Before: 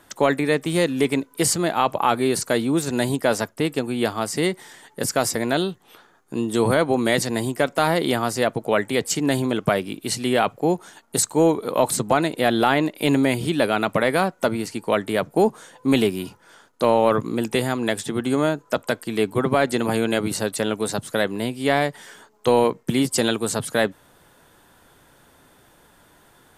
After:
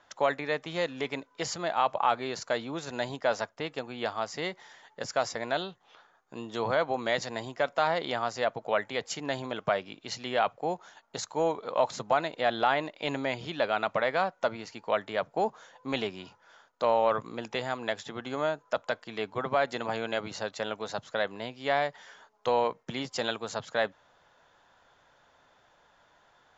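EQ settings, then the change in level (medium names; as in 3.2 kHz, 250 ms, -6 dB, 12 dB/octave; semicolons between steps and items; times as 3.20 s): Chebyshev low-pass 7.3 kHz, order 10; distance through air 53 m; resonant low shelf 460 Hz -7.5 dB, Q 1.5; -6.5 dB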